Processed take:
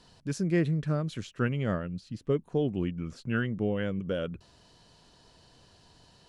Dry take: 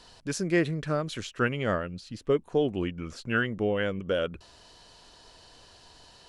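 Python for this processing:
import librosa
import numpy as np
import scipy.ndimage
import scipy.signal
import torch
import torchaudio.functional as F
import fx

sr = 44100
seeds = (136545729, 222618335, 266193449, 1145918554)

y = fx.peak_eq(x, sr, hz=150.0, db=11.0, octaves=2.0)
y = y * librosa.db_to_amplitude(-7.0)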